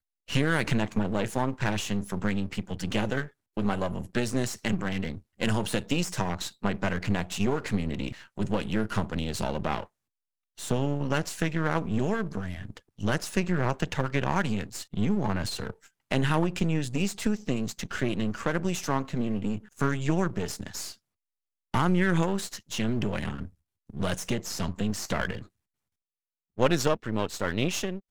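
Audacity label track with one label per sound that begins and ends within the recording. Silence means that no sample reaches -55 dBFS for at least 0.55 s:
10.570000	20.980000	sound
21.740000	25.480000	sound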